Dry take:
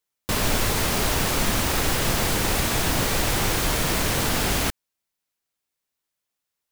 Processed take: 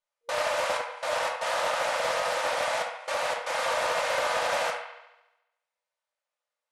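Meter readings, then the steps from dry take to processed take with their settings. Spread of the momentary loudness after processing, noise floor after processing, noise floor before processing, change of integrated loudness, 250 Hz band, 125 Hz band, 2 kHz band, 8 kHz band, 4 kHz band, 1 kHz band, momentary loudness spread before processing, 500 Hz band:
5 LU, below −85 dBFS, −83 dBFS, −5.5 dB, −24.0 dB, −29.0 dB, −2.5 dB, −12.5 dB, −7.5 dB, 0.0 dB, 1 LU, +0.5 dB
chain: brick-wall band-pass 470–11,000 Hz
spectral tilt −3.5 dB per octave
brickwall limiter −20 dBFS, peak gain reduction 5.5 dB
gate pattern "xxxxxx..xx.xxxxx" 117 BPM −24 dB
on a send: delay with a band-pass on its return 71 ms, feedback 61%, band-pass 1,600 Hz, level −7 dB
on the sum: rectangular room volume 690 cubic metres, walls furnished, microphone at 2.6 metres
highs frequency-modulated by the lows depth 0.13 ms
level −2 dB

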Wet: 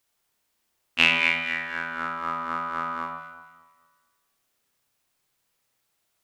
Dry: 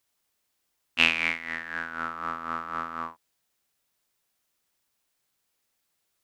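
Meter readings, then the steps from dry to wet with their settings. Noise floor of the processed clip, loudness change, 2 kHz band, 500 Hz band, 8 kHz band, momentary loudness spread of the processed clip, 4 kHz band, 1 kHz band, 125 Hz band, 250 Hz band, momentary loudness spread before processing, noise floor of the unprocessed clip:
−75 dBFS, +3.5 dB, +3.5 dB, +3.5 dB, can't be measured, 16 LU, +3.0 dB, +3.5 dB, +3.5 dB, +2.5 dB, 14 LU, −77 dBFS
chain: delay that swaps between a low-pass and a high-pass 116 ms, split 1,600 Hz, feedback 57%, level −7.5 dB
spring reverb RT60 1.3 s, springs 31 ms, chirp 65 ms, DRR 3.5 dB
level +1.5 dB

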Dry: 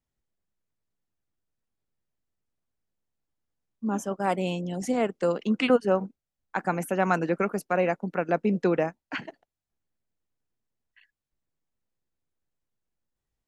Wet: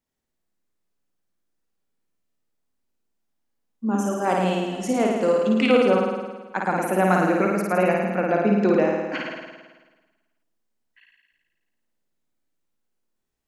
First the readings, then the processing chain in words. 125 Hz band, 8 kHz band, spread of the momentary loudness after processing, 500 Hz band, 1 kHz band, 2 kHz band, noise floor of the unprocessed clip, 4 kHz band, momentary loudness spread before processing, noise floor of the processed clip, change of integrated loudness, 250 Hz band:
+4.5 dB, +5.0 dB, 11 LU, +5.5 dB, +5.5 dB, +5.0 dB, below −85 dBFS, +5.0 dB, 12 LU, −77 dBFS, +5.5 dB, +6.0 dB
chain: low shelf with overshoot 160 Hz −6 dB, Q 1.5
flutter between parallel walls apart 9.3 metres, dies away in 1.3 s
level +1.5 dB

